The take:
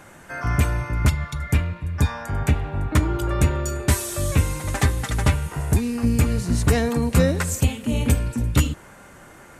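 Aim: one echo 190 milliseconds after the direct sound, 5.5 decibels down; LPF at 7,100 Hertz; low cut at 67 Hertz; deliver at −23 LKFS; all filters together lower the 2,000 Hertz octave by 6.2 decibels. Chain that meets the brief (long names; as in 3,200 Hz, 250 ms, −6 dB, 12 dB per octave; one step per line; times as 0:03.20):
high-pass filter 67 Hz
low-pass filter 7,100 Hz
parametric band 2,000 Hz −8 dB
single-tap delay 190 ms −5.5 dB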